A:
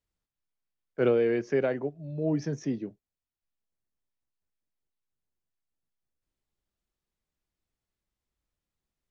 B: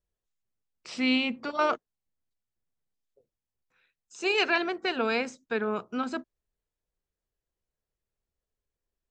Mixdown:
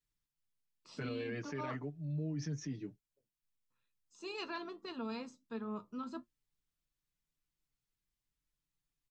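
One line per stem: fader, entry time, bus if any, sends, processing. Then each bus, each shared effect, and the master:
−4.0 dB, 0.00 s, no send, parametric band 560 Hz −13 dB 1.7 octaves; comb filter 6.8 ms, depth 95%
−11.0 dB, 0.00 s, no send, octave-band graphic EQ 125/250/500/1,000/2,000/4,000 Hz +8/+6/−4/+8/−9/+4 dB; flanger 1.6 Hz, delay 8.5 ms, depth 1.9 ms, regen +60%; notch comb filter 760 Hz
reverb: not used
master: brickwall limiter −32 dBFS, peak gain reduction 10.5 dB

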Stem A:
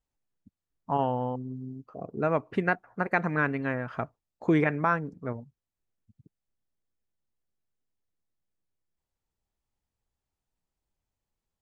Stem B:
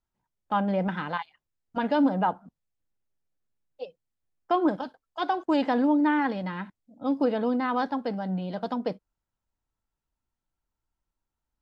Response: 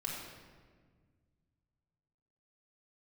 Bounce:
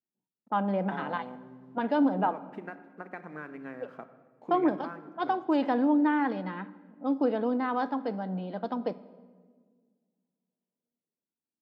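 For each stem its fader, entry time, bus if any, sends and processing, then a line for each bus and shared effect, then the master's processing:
+0.5 dB, 0.00 s, send −20.5 dB, downward compressor 5 to 1, threshold −27 dBFS, peak gain reduction 8 dB; dead-zone distortion −57.5 dBFS; automatic ducking −11 dB, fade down 1.25 s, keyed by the second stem
−2.5 dB, 0.00 s, send −15 dB, low-pass that shuts in the quiet parts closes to 400 Hz, open at −25 dBFS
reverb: on, RT60 1.6 s, pre-delay 3 ms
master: high-pass filter 180 Hz 24 dB per octave; high-shelf EQ 2,900 Hz −8.5 dB

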